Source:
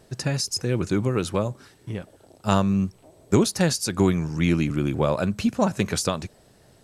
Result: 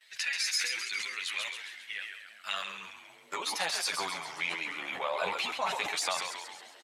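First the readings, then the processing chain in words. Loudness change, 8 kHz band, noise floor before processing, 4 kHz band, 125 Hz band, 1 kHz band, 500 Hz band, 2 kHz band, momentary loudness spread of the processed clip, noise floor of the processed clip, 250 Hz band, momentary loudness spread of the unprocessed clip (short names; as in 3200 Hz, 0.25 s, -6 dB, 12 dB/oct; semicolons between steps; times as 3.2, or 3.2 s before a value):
-9.0 dB, -5.5 dB, -56 dBFS, -0.5 dB, -36.5 dB, -4.5 dB, -15.0 dB, +2.0 dB, 12 LU, -56 dBFS, -30.0 dB, 11 LU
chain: bin magnitudes rounded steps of 15 dB; gate with hold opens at -49 dBFS; band shelf 2900 Hz +8.5 dB 1.3 oct; compressor, threshold -24 dBFS, peak gain reduction 11 dB; chorus voices 6, 0.4 Hz, delay 11 ms, depth 1.3 ms; added harmonics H 8 -35 dB, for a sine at -11 dBFS; on a send: frequency-shifting echo 0.135 s, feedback 58%, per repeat -110 Hz, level -7 dB; on the sum: high-pass sweep 1900 Hz -> 870 Hz, 2.09–3.63; sustainer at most 47 dB/s; gain -1 dB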